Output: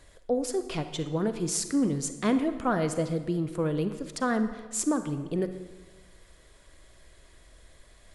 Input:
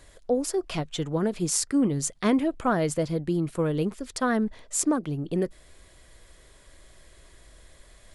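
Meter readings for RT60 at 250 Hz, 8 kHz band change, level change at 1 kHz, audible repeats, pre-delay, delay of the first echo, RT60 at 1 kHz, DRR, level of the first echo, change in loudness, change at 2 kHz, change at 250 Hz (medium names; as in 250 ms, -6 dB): 1.3 s, -3.5 dB, -2.0 dB, no echo, 34 ms, no echo, 1.3 s, 9.5 dB, no echo, -2.5 dB, -2.0 dB, -2.0 dB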